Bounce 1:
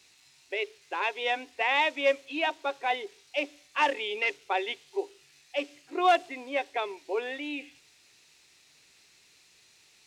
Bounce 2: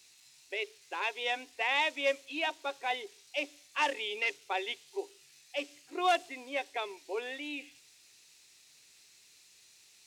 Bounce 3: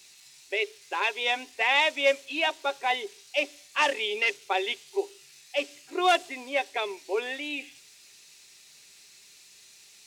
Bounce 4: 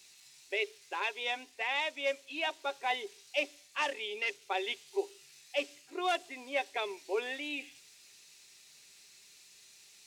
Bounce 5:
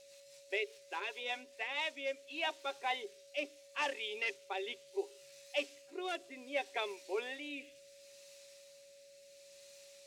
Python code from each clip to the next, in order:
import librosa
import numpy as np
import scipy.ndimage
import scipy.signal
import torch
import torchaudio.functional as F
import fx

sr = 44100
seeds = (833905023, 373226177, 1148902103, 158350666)

y1 = fx.high_shelf(x, sr, hz=4100.0, db=11.0)
y1 = F.gain(torch.from_numpy(y1), -6.0).numpy()
y2 = y1 + 0.31 * np.pad(y1, (int(5.0 * sr / 1000.0), 0))[:len(y1)]
y2 = F.gain(torch.from_numpy(y2), 6.5).numpy()
y3 = fx.rider(y2, sr, range_db=3, speed_s=0.5)
y3 = F.gain(torch.from_numpy(y3), -7.5).numpy()
y4 = fx.wow_flutter(y3, sr, seeds[0], rate_hz=2.1, depth_cents=26.0)
y4 = fx.rotary_switch(y4, sr, hz=5.0, then_hz=0.7, switch_at_s=1.34)
y4 = y4 + 10.0 ** (-56.0 / 20.0) * np.sin(2.0 * np.pi * 560.0 * np.arange(len(y4)) / sr)
y4 = F.gain(torch.from_numpy(y4), -1.5).numpy()